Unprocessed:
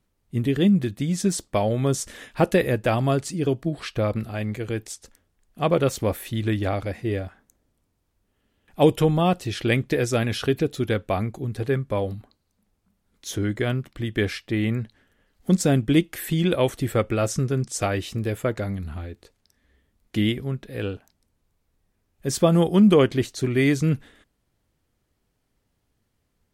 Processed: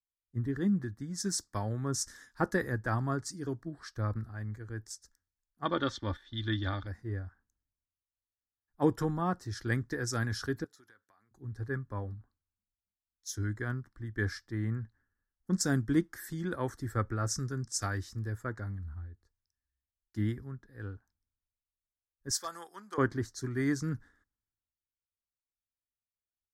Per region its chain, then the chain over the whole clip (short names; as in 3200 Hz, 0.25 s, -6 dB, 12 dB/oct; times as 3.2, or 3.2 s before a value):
5.65–6.87 gate -36 dBFS, range -7 dB + synth low-pass 3400 Hz, resonance Q 12 + comb 3.4 ms, depth 45%
10.64–11.31 HPF 1400 Hz 6 dB/oct + compressor 4:1, threshold -40 dBFS
22.3–22.98 HPF 780 Hz + hard clip -16.5 dBFS
whole clip: EQ curve 110 Hz 0 dB, 150 Hz -7 dB, 290 Hz -4 dB, 610 Hz -13 dB, 930 Hz -2 dB, 1700 Hz +3 dB, 2600 Hz -24 dB, 5300 Hz +1 dB, 9400 Hz -7 dB; three-band expander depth 70%; gain -6.5 dB